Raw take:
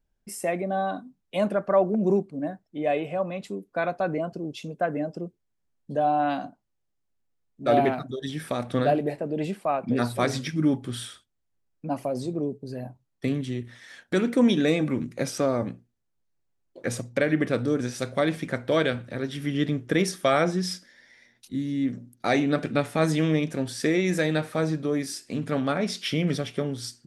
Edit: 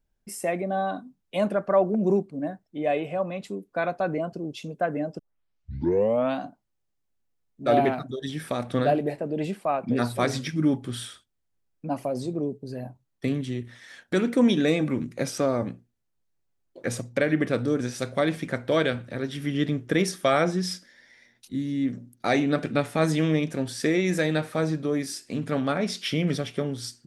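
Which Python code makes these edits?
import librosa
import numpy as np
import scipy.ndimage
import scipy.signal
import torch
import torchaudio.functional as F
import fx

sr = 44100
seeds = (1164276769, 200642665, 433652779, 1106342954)

y = fx.edit(x, sr, fx.tape_start(start_s=5.19, length_s=1.2), tone=tone)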